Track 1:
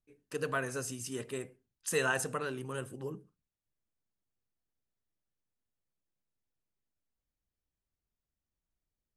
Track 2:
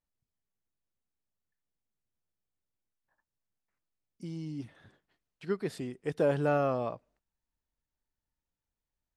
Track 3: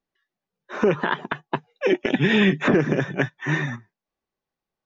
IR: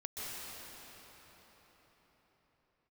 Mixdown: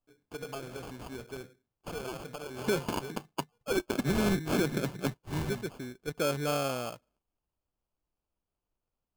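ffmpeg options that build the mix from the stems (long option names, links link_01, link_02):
-filter_complex "[0:a]acompressor=threshold=-37dB:ratio=2.5,asoftclip=type=hard:threshold=-29.5dB,volume=-1dB[link_01];[1:a]volume=-3dB[link_02];[2:a]highshelf=frequency=6300:gain=11,adelay=1850,volume=-10dB[link_03];[link_01][link_02][link_03]amix=inputs=3:normalize=0,acrusher=samples=23:mix=1:aa=0.000001"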